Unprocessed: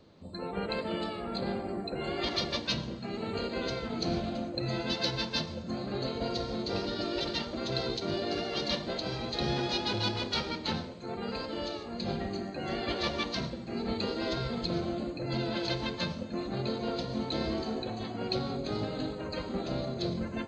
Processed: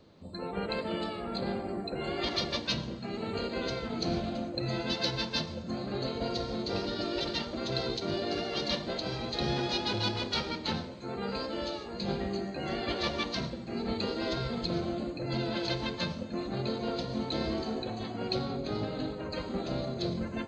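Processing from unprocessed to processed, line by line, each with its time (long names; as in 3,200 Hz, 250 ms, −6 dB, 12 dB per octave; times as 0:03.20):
0:10.91–0:12.68: double-tracking delay 15 ms −6 dB
0:18.45–0:19.32: high-frequency loss of the air 51 metres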